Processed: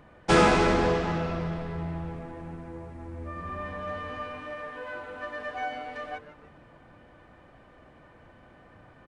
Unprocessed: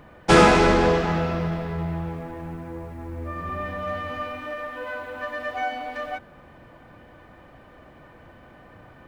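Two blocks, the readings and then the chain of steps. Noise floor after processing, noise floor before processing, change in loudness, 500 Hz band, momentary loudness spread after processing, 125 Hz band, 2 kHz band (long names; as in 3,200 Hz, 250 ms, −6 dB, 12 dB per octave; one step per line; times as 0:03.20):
−55 dBFS, −50 dBFS, −5.0 dB, −5.5 dB, 20 LU, −5.0 dB, −5.5 dB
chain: echo with shifted repeats 151 ms, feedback 49%, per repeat −150 Hz, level −14 dB
downsampling to 22,050 Hz
level −5.5 dB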